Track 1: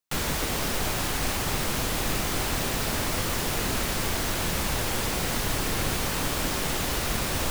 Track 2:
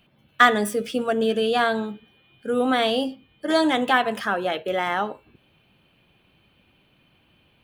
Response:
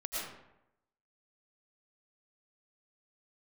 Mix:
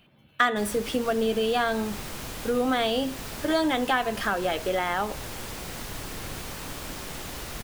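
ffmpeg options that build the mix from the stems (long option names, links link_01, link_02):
-filter_complex "[0:a]adelay=450,volume=-9dB[link_01];[1:a]volume=1.5dB[link_02];[link_01][link_02]amix=inputs=2:normalize=0,acompressor=threshold=-25dB:ratio=2"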